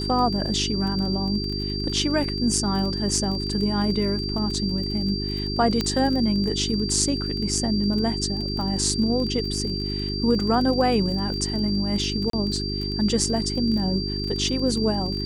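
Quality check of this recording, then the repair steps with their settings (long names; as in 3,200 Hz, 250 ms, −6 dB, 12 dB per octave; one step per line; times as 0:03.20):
surface crackle 27 per second −29 dBFS
mains hum 50 Hz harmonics 8 −29 dBFS
whistle 4,700 Hz −30 dBFS
0:05.81: click −10 dBFS
0:12.30–0:12.33: drop-out 33 ms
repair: click removal
notch filter 4,700 Hz, Q 30
hum removal 50 Hz, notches 8
repair the gap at 0:12.30, 33 ms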